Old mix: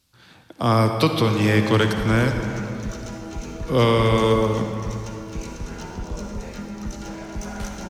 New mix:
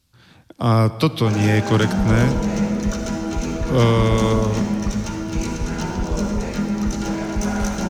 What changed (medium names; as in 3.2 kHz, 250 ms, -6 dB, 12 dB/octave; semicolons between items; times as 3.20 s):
speech: send -11.5 dB; first sound +8.0 dB; master: add bass shelf 220 Hz +7.5 dB